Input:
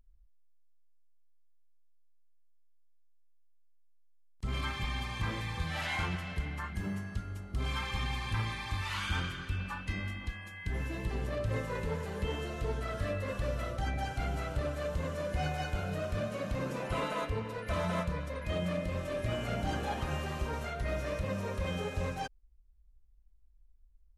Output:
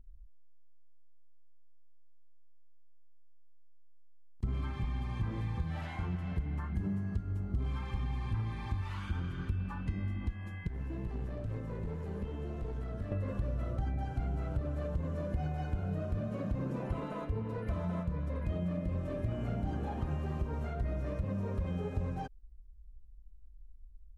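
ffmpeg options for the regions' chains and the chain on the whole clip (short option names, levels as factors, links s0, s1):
-filter_complex "[0:a]asettb=1/sr,asplit=3[s0][s1][s2];[s0]atrim=end=10.674[s3];[s1]atrim=start=10.67:end=13.12,asetpts=PTS-STARTPTS,afade=t=in:d=0.004:c=qsin,afade=t=out:st=2.446:d=0.004:c=qsin,acrossover=split=670|1500[s4][s5][s6];[s4]acompressor=threshold=0.00631:ratio=4[s7];[s5]acompressor=threshold=0.00126:ratio=4[s8];[s6]acompressor=threshold=0.00158:ratio=4[s9];[s7][s8][s9]amix=inputs=3:normalize=0,aeval=exprs='clip(val(0),-1,0.00596)':c=same[s10];[s2]atrim=start=13.116[s11];[s3][s10]acrossfade=d=0.004:c1=hsin:c2=qsin[s12];[s12][s11]acrossfade=d=0.004:c1=qsin:c2=hsin,equalizer=f=540:t=o:w=0.47:g=-5,acompressor=threshold=0.01:ratio=6,tiltshelf=f=1100:g=10"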